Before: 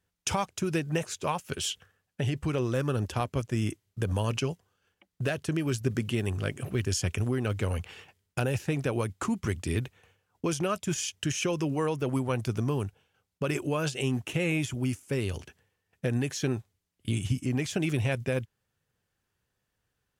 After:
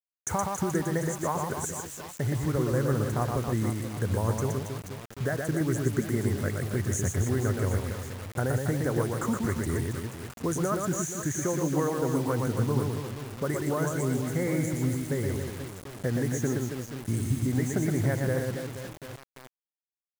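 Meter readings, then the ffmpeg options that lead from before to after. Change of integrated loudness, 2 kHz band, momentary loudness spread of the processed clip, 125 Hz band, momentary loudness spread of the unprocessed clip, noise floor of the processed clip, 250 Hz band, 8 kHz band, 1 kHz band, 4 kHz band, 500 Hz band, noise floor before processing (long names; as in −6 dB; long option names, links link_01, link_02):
+1.5 dB, −0.5 dB, 9 LU, +2.5 dB, 6 LU, below −85 dBFS, +2.0 dB, +2.5 dB, +2.5 dB, −7.0 dB, +2.0 dB, −81 dBFS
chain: -af "asuperstop=centerf=3600:order=20:qfactor=0.95,aecho=1:1:120|276|478.8|742.4|1085:0.631|0.398|0.251|0.158|0.1,acrusher=bits=6:mix=0:aa=0.000001"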